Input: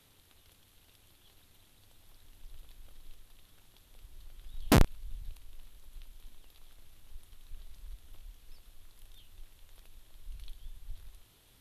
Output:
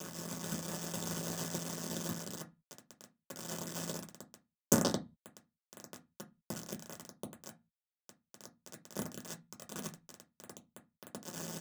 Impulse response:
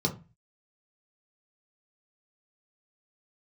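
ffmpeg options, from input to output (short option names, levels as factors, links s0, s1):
-filter_complex "[0:a]acompressor=threshold=0.00224:ratio=3,aeval=exprs='val(0)*sin(2*PI*84*n/s)':c=same,highpass=f=53:p=1,lowshelf=f=150:g=-9,acrossover=split=5500[s0][s1];[s0]adelay=130[s2];[s2][s1]amix=inputs=2:normalize=0,aexciter=amount=9.8:drive=5.2:freq=3400,asettb=1/sr,asplit=3[s3][s4][s5];[s3]atrim=end=10.414[s6];[s4]atrim=start=10.41:end=10.95,asetpts=PTS-STARTPTS,afade=t=in:d=0.004:c=qsin,afade=t=out:st=0.536:d=0.004:c=qsin,equalizer=f=9300:w=3.4:g=5[s7];[s5]atrim=start=10.946[s8];[s6][s7]acrossfade=d=0.004:c1=hsin:c2=qsin[s9];[s9][s8]acrossfade=d=0.004:c1=qsin:c2=hsin,acrusher=bits=4:dc=4:mix=0:aa=0.000001,dynaudnorm=f=130:g=9:m=1.58[s10];[1:a]atrim=start_sample=2205,asetrate=61740,aresample=44100[s11];[s10][s11]afir=irnorm=-1:irlink=0,volume=1.88"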